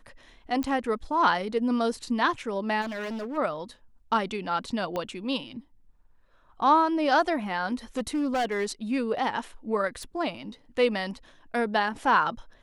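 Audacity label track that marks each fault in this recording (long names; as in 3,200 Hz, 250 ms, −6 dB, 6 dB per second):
0.630000	0.630000	click −18 dBFS
2.810000	3.380000	clipping −30.5 dBFS
4.960000	4.960000	click −18 dBFS
7.970000	8.660000	clipping −23 dBFS
10.030000	10.030000	click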